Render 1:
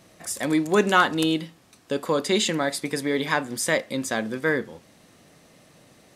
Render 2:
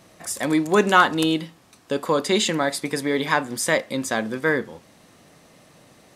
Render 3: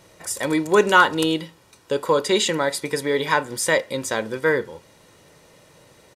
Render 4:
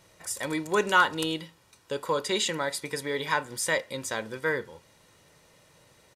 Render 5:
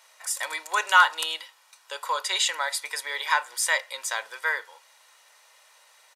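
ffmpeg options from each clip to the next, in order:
ffmpeg -i in.wav -af "equalizer=frequency=990:width=1.5:gain=3,volume=1.5dB" out.wav
ffmpeg -i in.wav -af "aecho=1:1:2.1:0.5" out.wav
ffmpeg -i in.wav -af "equalizer=frequency=360:width_type=o:width=2.1:gain=-4.5,volume=-5.5dB" out.wav
ffmpeg -i in.wav -af "highpass=frequency=750:width=0.5412,highpass=frequency=750:width=1.3066,volume=4.5dB" out.wav

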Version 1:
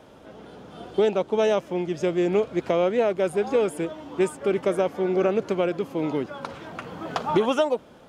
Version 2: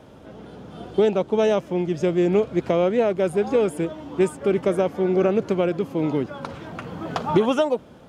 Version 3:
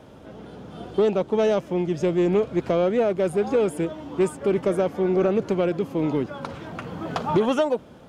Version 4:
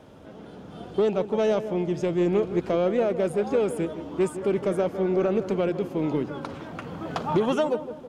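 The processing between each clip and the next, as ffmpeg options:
ffmpeg -i in.wav -af "equalizer=frequency=94:width=0.37:gain=7.5" out.wav
ffmpeg -i in.wav -af "asoftclip=type=tanh:threshold=-11.5dB" out.wav
ffmpeg -i in.wav -filter_complex "[0:a]bandreject=frequency=60:width_type=h:width=6,bandreject=frequency=120:width_type=h:width=6,asplit=2[link_01][link_02];[link_02]adelay=161,lowpass=frequency=1300:poles=1,volume=-11dB,asplit=2[link_03][link_04];[link_04]adelay=161,lowpass=frequency=1300:poles=1,volume=0.49,asplit=2[link_05][link_06];[link_06]adelay=161,lowpass=frequency=1300:poles=1,volume=0.49,asplit=2[link_07][link_08];[link_08]adelay=161,lowpass=frequency=1300:poles=1,volume=0.49,asplit=2[link_09][link_10];[link_10]adelay=161,lowpass=frequency=1300:poles=1,volume=0.49[link_11];[link_01][link_03][link_05][link_07][link_09][link_11]amix=inputs=6:normalize=0,volume=-2.5dB" out.wav

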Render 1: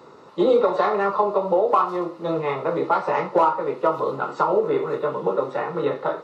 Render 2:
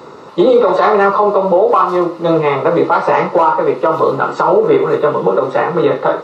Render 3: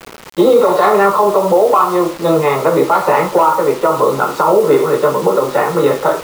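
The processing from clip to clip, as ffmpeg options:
ffmpeg -i in.wav -af "alimiter=level_in=13dB:limit=-1dB:release=50:level=0:latency=1,volume=-1dB" out.wav
ffmpeg -i in.wav -af "acrusher=bits=4:mix=0:aa=0.000001" out.wav

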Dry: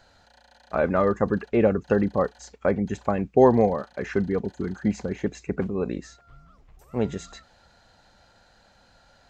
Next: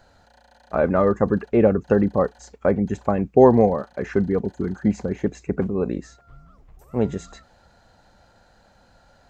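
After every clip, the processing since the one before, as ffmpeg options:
ffmpeg -i in.wav -af "equalizer=frequency=3600:width=0.47:gain=-7,volume=4dB" out.wav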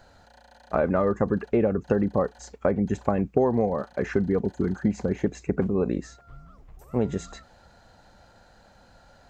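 ffmpeg -i in.wav -af "acompressor=threshold=-20dB:ratio=6,volume=1dB" out.wav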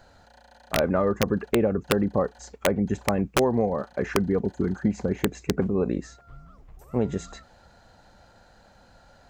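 ffmpeg -i in.wav -af "aeval=exprs='(mod(3.76*val(0)+1,2)-1)/3.76':channel_layout=same" out.wav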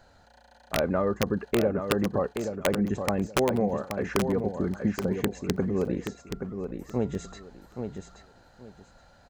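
ffmpeg -i in.wav -af "aecho=1:1:826|1652|2478:0.447|0.0938|0.0197,volume=-3dB" out.wav

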